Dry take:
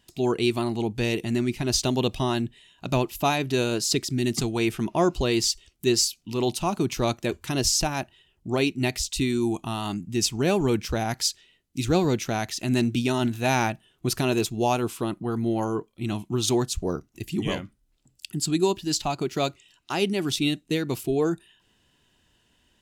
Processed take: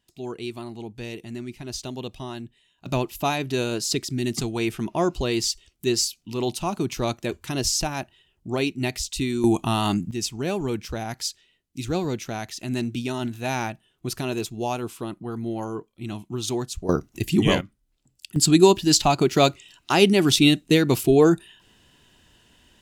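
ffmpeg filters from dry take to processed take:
-af "asetnsamples=n=441:p=0,asendcmd='2.86 volume volume -1dB;9.44 volume volume 7dB;10.11 volume volume -4dB;16.89 volume volume 8dB;17.61 volume volume -2.5dB;18.36 volume volume 8dB',volume=0.335"

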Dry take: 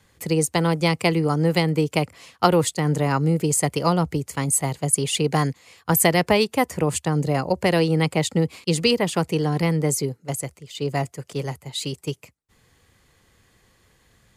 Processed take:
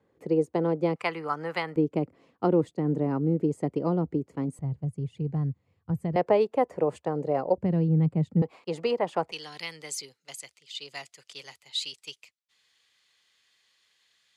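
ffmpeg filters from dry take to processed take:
-af "asetnsamples=n=441:p=0,asendcmd='0.96 bandpass f 1300;1.76 bandpass f 300;4.59 bandpass f 100;6.16 bandpass f 540;7.58 bandpass f 160;8.42 bandpass f 750;9.32 bandpass f 3700',bandpass=f=400:t=q:w=1.5:csg=0"

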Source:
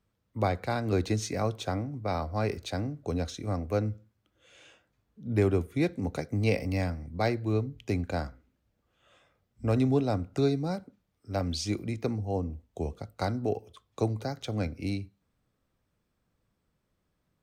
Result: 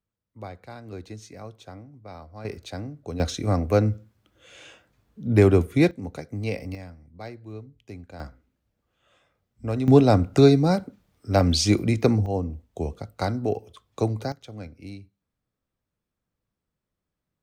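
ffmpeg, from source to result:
-af "asetnsamples=n=441:p=0,asendcmd='2.45 volume volume -2dB;3.2 volume volume 8.5dB;5.91 volume volume -2.5dB;6.75 volume volume -11dB;8.2 volume volume -1dB;9.88 volume volume 11dB;12.26 volume volume 4dB;14.32 volume volume -7.5dB',volume=0.282"

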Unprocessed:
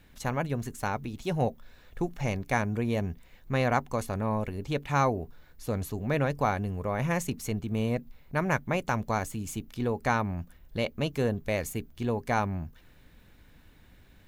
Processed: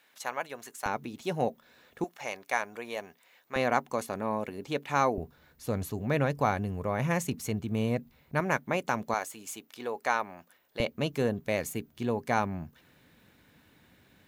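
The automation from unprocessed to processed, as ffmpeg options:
-af "asetnsamples=n=441:p=0,asendcmd='0.86 highpass f 210;2.04 highpass f 620;3.56 highpass f 230;5.18 highpass f 83;8.4 highpass f 200;9.14 highpass f 500;10.8 highpass f 130',highpass=650"

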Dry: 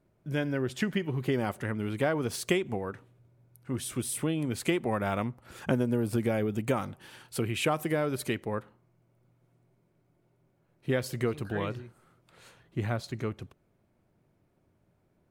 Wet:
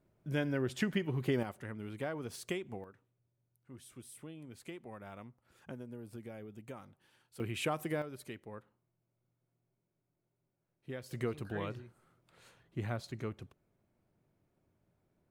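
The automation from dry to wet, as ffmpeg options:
-af "asetnsamples=n=441:p=0,asendcmd='1.43 volume volume -11dB;2.84 volume volume -19dB;7.4 volume volume -7dB;8.02 volume volume -15dB;11.11 volume volume -6.5dB',volume=0.668"

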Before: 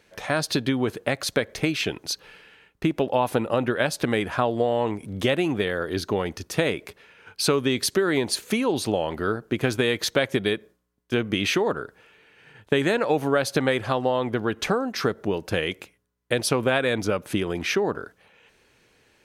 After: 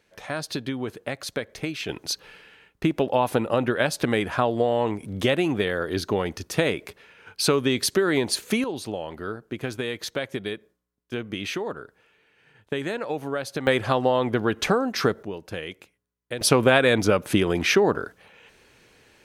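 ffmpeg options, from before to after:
-af "asetnsamples=n=441:p=0,asendcmd='1.89 volume volume 0.5dB;8.64 volume volume -7dB;13.67 volume volume 2dB;15.23 volume volume -8dB;16.41 volume volume 4.5dB',volume=0.501"

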